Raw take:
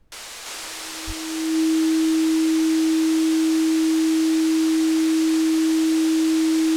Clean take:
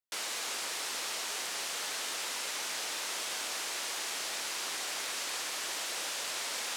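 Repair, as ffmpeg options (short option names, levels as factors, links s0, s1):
-filter_complex "[0:a]bandreject=f=320:w=30,asplit=3[s0][s1][s2];[s0]afade=t=out:st=1.06:d=0.02[s3];[s1]highpass=f=140:w=0.5412,highpass=f=140:w=1.3066,afade=t=in:st=1.06:d=0.02,afade=t=out:st=1.18:d=0.02[s4];[s2]afade=t=in:st=1.18:d=0.02[s5];[s3][s4][s5]amix=inputs=3:normalize=0,agate=range=0.0891:threshold=0.0562,asetnsamples=n=441:p=0,asendcmd='0.46 volume volume -3.5dB',volume=1"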